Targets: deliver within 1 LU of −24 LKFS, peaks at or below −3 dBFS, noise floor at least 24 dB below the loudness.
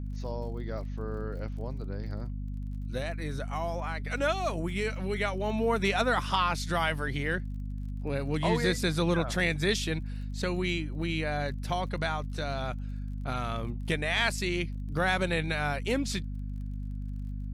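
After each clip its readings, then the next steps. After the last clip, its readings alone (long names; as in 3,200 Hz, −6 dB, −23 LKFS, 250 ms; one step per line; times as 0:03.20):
crackle rate 34 per second; mains hum 50 Hz; hum harmonics up to 250 Hz; level of the hum −33 dBFS; integrated loudness −31.0 LKFS; sample peak −13.0 dBFS; target loudness −24.0 LKFS
→ click removal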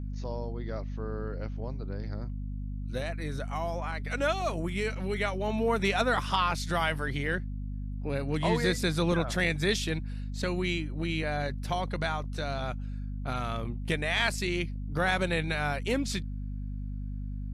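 crackle rate 0 per second; mains hum 50 Hz; hum harmonics up to 250 Hz; level of the hum −33 dBFS
→ hum removal 50 Hz, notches 5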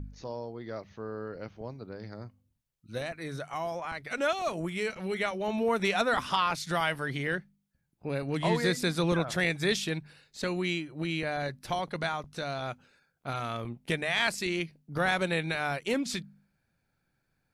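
mains hum none found; integrated loudness −31.5 LKFS; sample peak −13.5 dBFS; target loudness −24.0 LKFS
→ level +7.5 dB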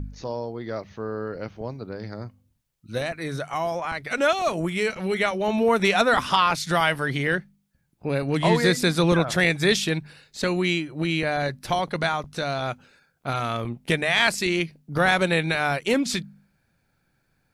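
integrated loudness −24.0 LKFS; sample peak −6.0 dBFS; background noise floor −70 dBFS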